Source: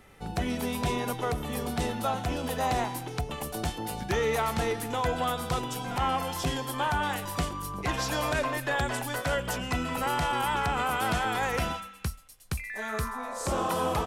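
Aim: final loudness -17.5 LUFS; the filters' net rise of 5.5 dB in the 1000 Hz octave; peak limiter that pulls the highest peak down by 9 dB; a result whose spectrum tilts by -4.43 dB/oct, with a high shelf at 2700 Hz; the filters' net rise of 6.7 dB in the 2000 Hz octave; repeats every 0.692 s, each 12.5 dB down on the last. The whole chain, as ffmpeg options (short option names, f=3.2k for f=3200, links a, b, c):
-af "equalizer=f=1k:t=o:g=5.5,equalizer=f=2k:t=o:g=8,highshelf=f=2.7k:g=-3.5,alimiter=limit=-20.5dB:level=0:latency=1,aecho=1:1:692|1384|2076:0.237|0.0569|0.0137,volume=12.5dB"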